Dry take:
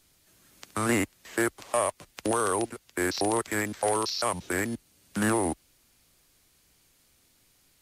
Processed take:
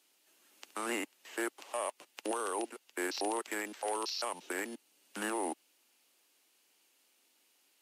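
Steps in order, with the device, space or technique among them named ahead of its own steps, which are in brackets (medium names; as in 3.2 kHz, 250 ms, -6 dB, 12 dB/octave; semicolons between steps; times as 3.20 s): laptop speaker (high-pass 280 Hz 24 dB/octave; peaking EQ 860 Hz +5 dB 0.23 oct; peaking EQ 2.8 kHz +6.5 dB 0.34 oct; peak limiter -18.5 dBFS, peak gain reduction 6 dB); trim -6.5 dB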